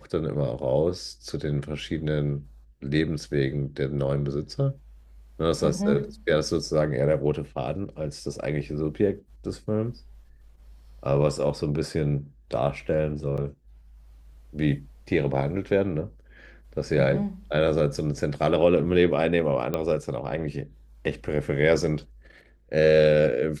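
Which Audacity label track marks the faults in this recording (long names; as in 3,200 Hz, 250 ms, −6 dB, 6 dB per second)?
13.370000	13.380000	drop-out 7.7 ms
19.740000	19.740000	click −14 dBFS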